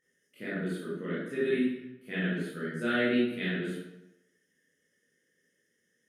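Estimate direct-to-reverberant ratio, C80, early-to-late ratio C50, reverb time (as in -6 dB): -11.5 dB, 3.0 dB, -1.5 dB, 0.95 s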